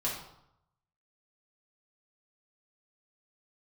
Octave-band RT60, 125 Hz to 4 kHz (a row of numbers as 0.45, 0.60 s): 1.0, 0.75, 0.75, 0.80, 0.60, 0.55 s